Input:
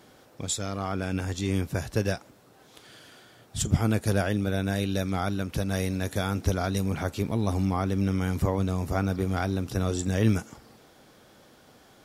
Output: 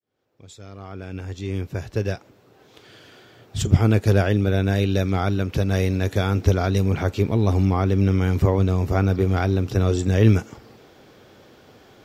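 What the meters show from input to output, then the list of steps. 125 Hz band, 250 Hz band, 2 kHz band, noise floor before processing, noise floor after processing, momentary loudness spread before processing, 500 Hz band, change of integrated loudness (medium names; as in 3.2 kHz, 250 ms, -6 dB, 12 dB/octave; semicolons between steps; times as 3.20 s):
+8.0 dB, +5.0 dB, +4.0 dB, -56 dBFS, -54 dBFS, 6 LU, +7.0 dB, +7.0 dB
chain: fade-in on the opening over 3.75 s; fifteen-band graphic EQ 100 Hz +6 dB, 400 Hz +6 dB, 2.5 kHz +3 dB, 10 kHz -12 dB; trim +3.5 dB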